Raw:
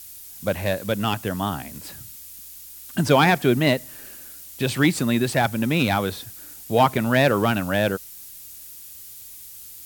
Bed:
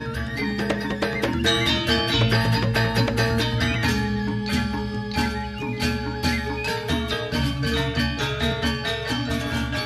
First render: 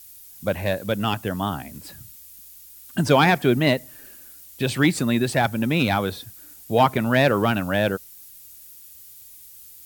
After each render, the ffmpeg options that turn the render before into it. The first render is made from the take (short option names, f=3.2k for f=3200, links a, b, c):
-af "afftdn=nr=6:nf=-42"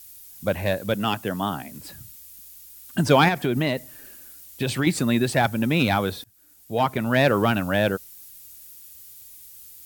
-filter_complex "[0:a]asettb=1/sr,asplit=3[a][b][c];[a]atrim=end=0.944[d];[b]atrim=start=0.94:end=1.8,asetpts=PTS-STARTPTS,afade=t=in:d=0.004:c=qsin,afade=t=out:st=0.856:d=0.004:c=qsin,highpass=130[e];[c]atrim=start=1.796[f];[d][e]acrossfade=d=0.004:c1=hsin:c2=qsin[g];[g][f]acrossfade=d=0.004:c1=qsin:c2=hsin,asettb=1/sr,asplit=3[h][i][j];[h]atrim=end=3.284[k];[i]atrim=start=3.28:end=4.87,asetpts=PTS-STARTPTS,afade=t=in:d=0.004:c=qsin,afade=t=out:st=1.586:d=0.004:c=qsin,acompressor=threshold=-18dB:ratio=6:attack=3.2:release=140:knee=1:detection=peak[l];[j]atrim=start=4.866[m];[k][l]acrossfade=d=0.004:c1=hsin:c2=qsin[n];[n][m]acrossfade=d=0.004:c1=qsin:c2=hsin,asplit=2[o][p];[o]atrim=end=6.24,asetpts=PTS-STARTPTS,afade=t=out:st=6.236:d=0.004:c=hsin:silence=0.0944061[q];[p]atrim=start=6.24,asetpts=PTS-STARTPTS,afade=t=in:d=1.1:silence=0.0944061[r];[q][r]concat=n=2:v=0:a=1"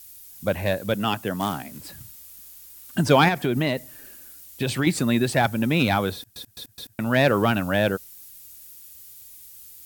-filter_complex "[0:a]asettb=1/sr,asplit=3[a][b][c];[a]atrim=end=1.404[d];[b]atrim=start=1.4:end=2.98,asetpts=PTS-STARTPTS,afade=t=in:d=0.004:c=qsin,afade=t=out:st=1.576:d=0.004:c=qsin,acrusher=bits=3:mode=log:mix=0:aa=0.000001[e];[c]atrim=start=2.976[f];[d][e]acrossfade=d=0.004:c1=hsin:c2=qsin[g];[g][f]acrossfade=d=0.004:c1=qsin:c2=hsin,asplit=5[h][i][j][k][l];[h]atrim=end=6.362[m];[i]atrim=start=6.148:end=6.362[n];[j]atrim=start=6.148:end=6.362[o];[k]atrim=start=6.148:end=6.362[p];[l]atrim=start=6.988[q];[m][n]acrossfade=d=0.004:c1=hsin:c2=hsin[r];[r][o]acrossfade=d=0.004:c1=hsin:c2=hsin[s];[s][p]acrossfade=d=0.004:c1=hsin:c2=hsin[t];[t][q]acrossfade=d=0.004:c1=hsin:c2=hsin"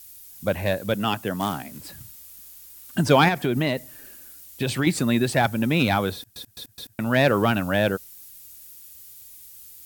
-af anull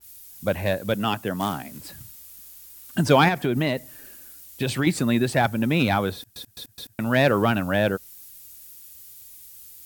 -af "adynamicequalizer=threshold=0.02:dfrequency=2500:dqfactor=0.7:tfrequency=2500:tqfactor=0.7:attack=5:release=100:ratio=0.375:range=2:mode=cutabove:tftype=highshelf"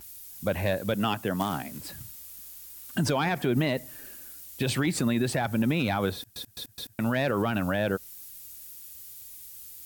-af "acompressor=mode=upward:threshold=-43dB:ratio=2.5,alimiter=limit=-16.5dB:level=0:latency=1:release=62"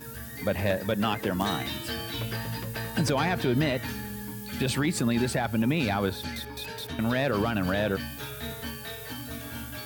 -filter_complex "[1:a]volume=-13.5dB[a];[0:a][a]amix=inputs=2:normalize=0"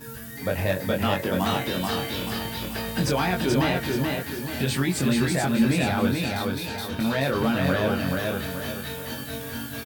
-filter_complex "[0:a]asplit=2[a][b];[b]adelay=22,volume=-3.5dB[c];[a][c]amix=inputs=2:normalize=0,aecho=1:1:431|862|1293|1724|2155:0.708|0.297|0.125|0.0525|0.022"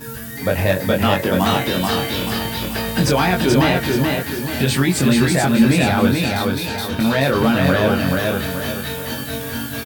-af "volume=7.5dB,alimiter=limit=-3dB:level=0:latency=1"